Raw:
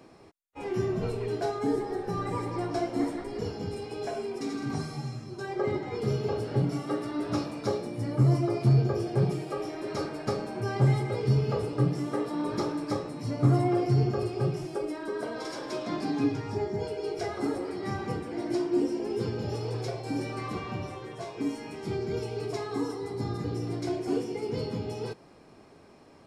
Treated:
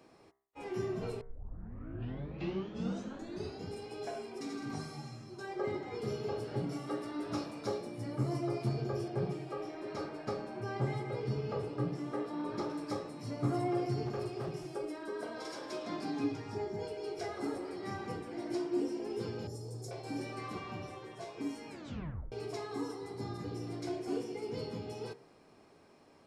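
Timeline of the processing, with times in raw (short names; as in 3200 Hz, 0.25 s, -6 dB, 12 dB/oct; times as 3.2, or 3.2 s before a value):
1.21 tape start 2.49 s
9.08–12.7 LPF 3700 Hz 6 dB/oct
14.05–14.64 overloaded stage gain 25.5 dB
19.47–19.91 EQ curve 180 Hz 0 dB, 670 Hz -9 dB, 2800 Hz -22 dB, 7200 Hz +6 dB
21.69 tape stop 0.63 s
whole clip: low shelf 210 Hz -5 dB; de-hum 66.54 Hz, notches 33; gain -5.5 dB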